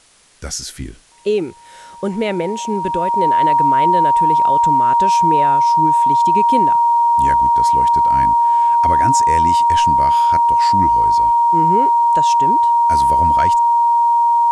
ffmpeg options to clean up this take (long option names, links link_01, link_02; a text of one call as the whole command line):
ffmpeg -i in.wav -af "bandreject=frequency=940:width=30,agate=range=-21dB:threshold=-22dB" out.wav